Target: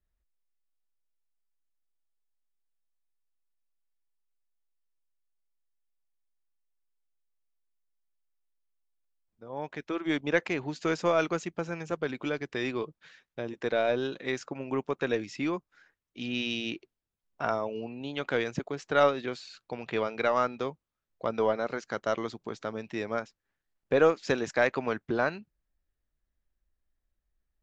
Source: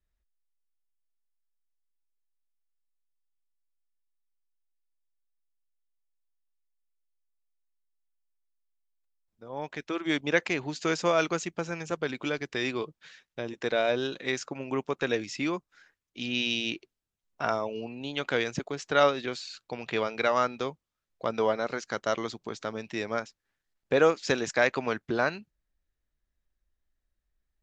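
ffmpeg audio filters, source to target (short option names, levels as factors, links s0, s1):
-af "highshelf=f=2900:g=-8.5,aeval=exprs='0.335*(cos(1*acos(clip(val(0)/0.335,-1,1)))-cos(1*PI/2))+0.00422*(cos(6*acos(clip(val(0)/0.335,-1,1)))-cos(6*PI/2))':c=same"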